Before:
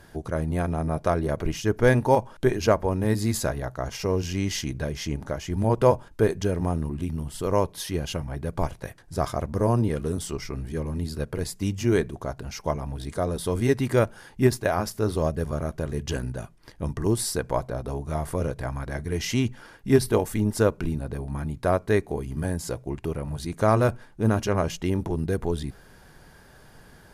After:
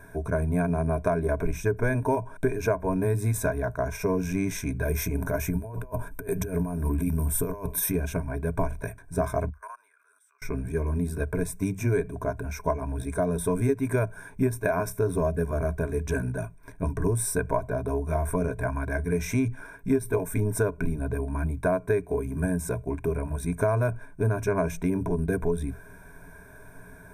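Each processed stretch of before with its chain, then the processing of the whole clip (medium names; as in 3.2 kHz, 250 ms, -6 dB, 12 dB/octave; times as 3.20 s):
4.82–7.92 s: peaking EQ 13 kHz +14 dB 0.65 oct + compressor with a negative ratio -29 dBFS, ratio -0.5
9.49–10.42 s: ladder high-pass 1.2 kHz, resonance 60% + level held to a coarse grid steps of 22 dB
whole clip: rippled EQ curve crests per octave 1.6, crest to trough 15 dB; compression 6:1, threshold -21 dBFS; high-order bell 4 kHz -14 dB 1.2 oct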